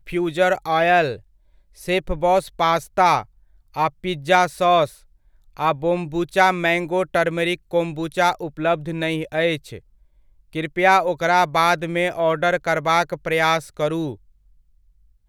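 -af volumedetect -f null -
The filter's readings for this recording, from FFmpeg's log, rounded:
mean_volume: -21.2 dB
max_volume: -2.0 dB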